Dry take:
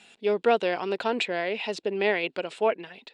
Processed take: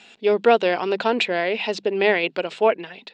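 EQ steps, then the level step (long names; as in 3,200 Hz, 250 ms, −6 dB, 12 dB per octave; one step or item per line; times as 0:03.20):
low-pass filter 7,000 Hz 24 dB per octave
mains-hum notches 50/100/150/200 Hz
+6.0 dB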